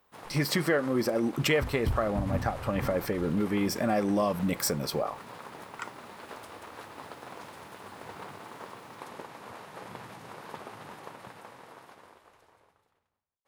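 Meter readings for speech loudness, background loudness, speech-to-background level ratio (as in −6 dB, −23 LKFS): −29.0 LKFS, −45.0 LKFS, 16.0 dB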